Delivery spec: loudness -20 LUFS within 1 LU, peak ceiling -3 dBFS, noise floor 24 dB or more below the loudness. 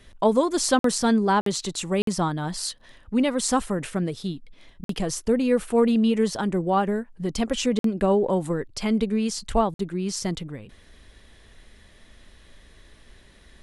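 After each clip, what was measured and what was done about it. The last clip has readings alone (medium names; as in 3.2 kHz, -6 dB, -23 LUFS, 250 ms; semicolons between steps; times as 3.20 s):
dropouts 6; longest dropout 53 ms; loudness -24.5 LUFS; peak level -8.0 dBFS; loudness target -20.0 LUFS
-> interpolate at 0.79/1.41/2.02/4.84/7.79/9.74 s, 53 ms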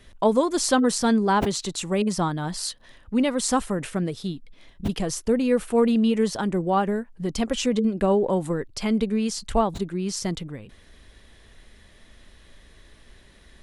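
dropouts 0; loudness -24.0 LUFS; peak level -8.0 dBFS; loudness target -20.0 LUFS
-> trim +4 dB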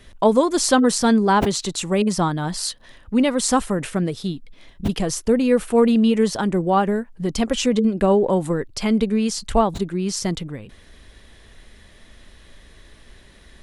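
loudness -20.0 LUFS; peak level -4.0 dBFS; noise floor -49 dBFS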